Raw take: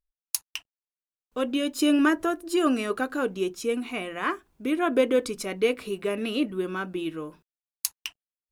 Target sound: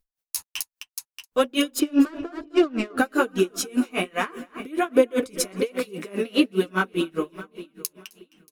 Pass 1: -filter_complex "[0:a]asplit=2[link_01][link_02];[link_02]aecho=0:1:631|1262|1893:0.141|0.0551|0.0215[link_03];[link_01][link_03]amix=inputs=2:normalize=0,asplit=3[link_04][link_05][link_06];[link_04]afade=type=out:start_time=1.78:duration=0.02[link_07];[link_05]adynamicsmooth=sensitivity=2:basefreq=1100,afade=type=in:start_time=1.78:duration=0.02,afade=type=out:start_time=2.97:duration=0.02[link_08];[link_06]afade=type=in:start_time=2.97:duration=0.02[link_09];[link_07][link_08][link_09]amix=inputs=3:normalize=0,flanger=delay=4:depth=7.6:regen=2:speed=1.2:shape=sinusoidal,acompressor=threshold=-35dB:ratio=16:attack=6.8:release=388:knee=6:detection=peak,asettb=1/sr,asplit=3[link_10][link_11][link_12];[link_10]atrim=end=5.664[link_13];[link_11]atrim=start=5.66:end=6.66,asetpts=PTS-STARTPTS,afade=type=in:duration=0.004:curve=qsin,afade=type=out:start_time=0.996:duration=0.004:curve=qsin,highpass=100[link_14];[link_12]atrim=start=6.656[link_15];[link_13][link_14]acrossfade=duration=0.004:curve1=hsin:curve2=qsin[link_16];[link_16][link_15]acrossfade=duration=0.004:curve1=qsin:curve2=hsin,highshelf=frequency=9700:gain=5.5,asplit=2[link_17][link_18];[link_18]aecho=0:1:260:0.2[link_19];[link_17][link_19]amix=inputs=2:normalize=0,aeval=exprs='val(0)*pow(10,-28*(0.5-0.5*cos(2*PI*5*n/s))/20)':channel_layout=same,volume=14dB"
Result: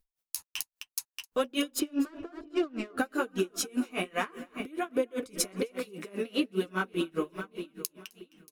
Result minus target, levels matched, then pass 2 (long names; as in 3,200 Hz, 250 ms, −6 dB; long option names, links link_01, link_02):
downward compressor: peak gain reduction +11 dB
-filter_complex "[0:a]asplit=2[link_01][link_02];[link_02]aecho=0:1:631|1262|1893:0.141|0.0551|0.0215[link_03];[link_01][link_03]amix=inputs=2:normalize=0,asplit=3[link_04][link_05][link_06];[link_04]afade=type=out:start_time=1.78:duration=0.02[link_07];[link_05]adynamicsmooth=sensitivity=2:basefreq=1100,afade=type=in:start_time=1.78:duration=0.02,afade=type=out:start_time=2.97:duration=0.02[link_08];[link_06]afade=type=in:start_time=2.97:duration=0.02[link_09];[link_07][link_08][link_09]amix=inputs=3:normalize=0,flanger=delay=4:depth=7.6:regen=2:speed=1.2:shape=sinusoidal,acompressor=threshold=-23dB:ratio=16:attack=6.8:release=388:knee=6:detection=peak,asettb=1/sr,asplit=3[link_10][link_11][link_12];[link_10]atrim=end=5.664[link_13];[link_11]atrim=start=5.66:end=6.66,asetpts=PTS-STARTPTS,afade=type=in:duration=0.004:curve=qsin,afade=type=out:start_time=0.996:duration=0.004:curve=qsin,highpass=100[link_14];[link_12]atrim=start=6.656[link_15];[link_13][link_14]acrossfade=duration=0.004:curve1=hsin:curve2=qsin[link_16];[link_16][link_15]acrossfade=duration=0.004:curve1=qsin:curve2=hsin,highshelf=frequency=9700:gain=5.5,asplit=2[link_17][link_18];[link_18]aecho=0:1:260:0.2[link_19];[link_17][link_19]amix=inputs=2:normalize=0,aeval=exprs='val(0)*pow(10,-28*(0.5-0.5*cos(2*PI*5*n/s))/20)':channel_layout=same,volume=14dB"